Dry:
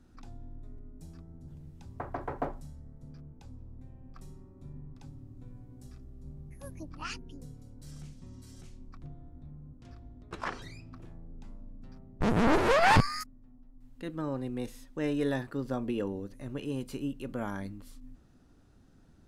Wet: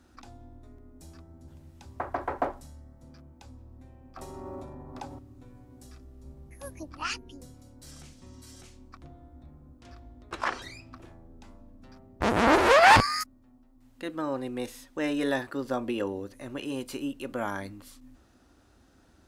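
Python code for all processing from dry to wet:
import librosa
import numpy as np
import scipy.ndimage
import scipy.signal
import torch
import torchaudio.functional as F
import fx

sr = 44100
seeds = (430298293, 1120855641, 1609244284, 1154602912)

y = fx.chain(x, sr, fx.peak_eq(hz=730.0, db=13.0, octaves=2.0),
    fx.env_flatten(amount_pct=100), at=(4.17, 5.19))
y = scipy.signal.sosfilt(scipy.signal.butter(2, 60.0, 'highpass', fs=sr, output='sos'), y)
y = fx.peak_eq(y, sr, hz=150.0, db=-14.5, octaves=1.3)
y = fx.notch(y, sr, hz=440.0, q=12.0)
y = y * 10.0 ** (7.0 / 20.0)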